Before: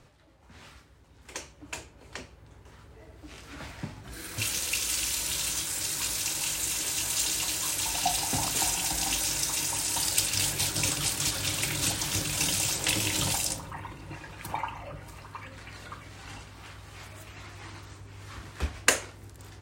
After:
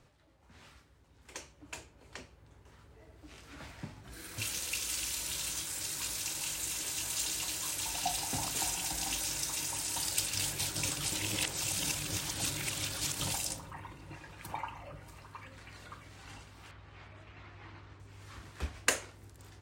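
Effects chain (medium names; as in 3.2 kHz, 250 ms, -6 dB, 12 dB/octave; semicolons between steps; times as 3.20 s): 11.12–13.20 s: reverse; 16.71–18.00 s: low-pass 3.1 kHz 12 dB/octave; trim -6.5 dB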